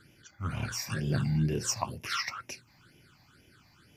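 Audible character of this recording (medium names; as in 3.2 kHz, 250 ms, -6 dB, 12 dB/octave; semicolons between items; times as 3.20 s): phasing stages 8, 2.1 Hz, lowest notch 400–1300 Hz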